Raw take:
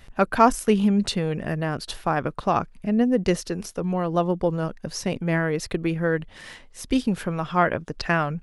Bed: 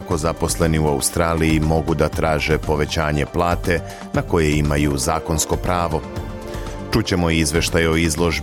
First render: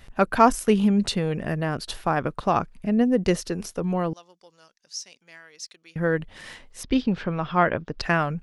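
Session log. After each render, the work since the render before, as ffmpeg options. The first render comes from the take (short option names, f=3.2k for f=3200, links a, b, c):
-filter_complex "[0:a]asettb=1/sr,asplit=3[a][b][c];[a]atrim=end=4.134[d];[b]atrim=start=4.13:end=5.96,asetpts=PTS-STARTPTS,afade=t=in:d=0.004:c=qsin,afade=t=out:st=1.826:d=0.004:c=qsin,bandpass=f=5.7k:t=q:w=2.6[e];[c]atrim=start=5.956[f];[d][e]acrossfade=d=0.004:c1=hsin:c2=qsin[g];[g][f]acrossfade=d=0.004:c1=qsin:c2=hsin,asettb=1/sr,asplit=3[h][i][j];[h]atrim=end=6.834[k];[i]atrim=start=6.83:end=7.99,asetpts=PTS-STARTPTS,afade=t=in:d=0.004:c=qsin,afade=t=out:st=1.156:d=0.004:c=qsin,lowpass=f=4.8k:w=0.5412,lowpass=f=4.8k:w=1.3066[l];[j]atrim=start=7.986[m];[k][l]acrossfade=d=0.004:c1=hsin:c2=qsin[n];[n][m]acrossfade=d=0.004:c1=qsin:c2=hsin"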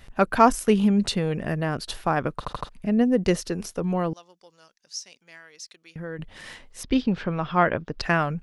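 -filter_complex "[0:a]asettb=1/sr,asplit=3[a][b][c];[a]atrim=end=4.994[d];[b]atrim=start=4.99:end=6.19,asetpts=PTS-STARTPTS,afade=t=in:d=0.004:c=qsin,afade=t=out:st=1.196:d=0.004:c=qsin,acompressor=threshold=-36dB:ratio=2.5:attack=3.2:release=140:knee=1:detection=peak[e];[c]atrim=start=6.186[f];[d][e]acrossfade=d=0.004:c1=hsin:c2=qsin[g];[g][f]acrossfade=d=0.004:c1=qsin:c2=hsin,asplit=5[h][i][j][k][l];[h]atrim=end=2.452[m];[i]atrim=start=2.368:end=2.452[n];[j]atrim=start=2.368:end=2.452[o];[k]atrim=start=2.368:end=2.452[p];[l]atrim=start=2.688[q];[m][n]acrossfade=d=0.004:c1=hsin:c2=hsin[r];[r][o]acrossfade=d=0.004:c1=hsin:c2=hsin[s];[s][p]acrossfade=d=0.004:c1=hsin:c2=hsin[t];[t][q]acrossfade=d=0.004:c1=hsin:c2=hsin"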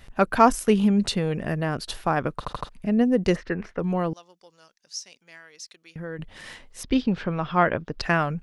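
-filter_complex "[0:a]asplit=3[a][b][c];[a]afade=t=out:st=3.35:d=0.02[d];[b]lowpass=f=1.9k:t=q:w=3.4,afade=t=in:st=3.35:d=0.02,afade=t=out:st=3.78:d=0.02[e];[c]afade=t=in:st=3.78:d=0.02[f];[d][e][f]amix=inputs=3:normalize=0"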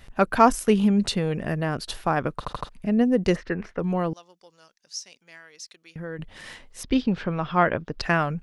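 -af anull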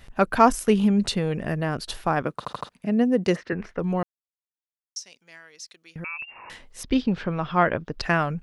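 -filter_complex "[0:a]asettb=1/sr,asplit=3[a][b][c];[a]atrim=end=2.224[d];[b]atrim=start=2.22:end=3.53,asetpts=PTS-STARTPTS,afade=t=in:d=0.004:c=qsin,afade=t=out:st=1.306:d=0.004:c=qsin,highpass=140[e];[c]atrim=start=3.526[f];[d][e]acrossfade=d=0.004:c1=hsin:c2=qsin[g];[g][f]acrossfade=d=0.004:c1=qsin:c2=hsin,asettb=1/sr,asplit=3[h][i][j];[h]atrim=end=6.044[k];[i]atrim=start=6.04:end=6.5,asetpts=PTS-STARTPTS,afade=t=in:d=0.004:c=qsin,afade=t=out:st=0.456:d=0.004:c=qsin,lowpass=f=2.4k:t=q:w=0.5098,lowpass=f=2.4k:t=q:w=0.6013,lowpass=f=2.4k:t=q:w=0.9,lowpass=f=2.4k:t=q:w=2.563,afreqshift=-2800[l];[j]atrim=start=6.496[m];[k][l]acrossfade=d=0.004:c1=hsin:c2=qsin[n];[n][m]acrossfade=d=0.004:c1=qsin:c2=hsin,asplit=3[o][p][q];[o]atrim=end=4.03,asetpts=PTS-STARTPTS,afade=t=out:st=4.026:d=0.004:c=hsin[r];[p]atrim=start=4.03:end=4.96,asetpts=PTS-STARTPTS,volume=0[s];[q]atrim=start=4.96,asetpts=PTS-STARTPTS,afade=t=in:d=0.004:c=hsin[t];[r][s][t]concat=n=3:v=0:a=1"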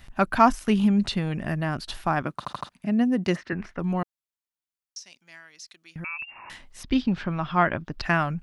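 -filter_complex "[0:a]acrossover=split=4900[a][b];[b]acompressor=threshold=-43dB:ratio=4:attack=1:release=60[c];[a][c]amix=inputs=2:normalize=0,equalizer=f=470:t=o:w=0.43:g=-11"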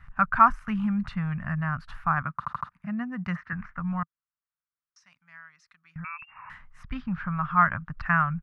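-af "firequalizer=gain_entry='entry(160,0);entry(360,-28);entry(580,-15);entry(1200,6);entry(3400,-19);entry(10000,-24)':delay=0.05:min_phase=1"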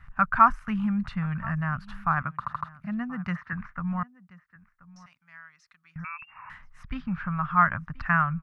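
-af "aecho=1:1:1030:0.0841"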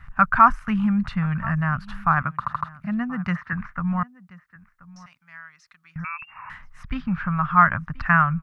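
-af "volume=5.5dB,alimiter=limit=-3dB:level=0:latency=1"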